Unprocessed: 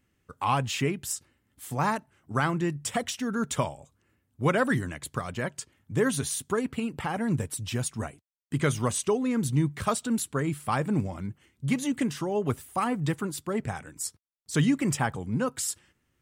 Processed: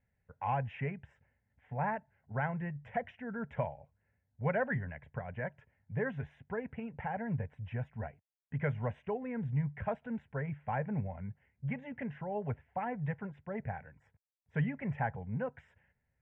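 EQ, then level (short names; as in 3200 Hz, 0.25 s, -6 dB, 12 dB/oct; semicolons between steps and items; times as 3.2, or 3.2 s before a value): LPF 2000 Hz 24 dB/oct; fixed phaser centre 1200 Hz, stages 6; -4.0 dB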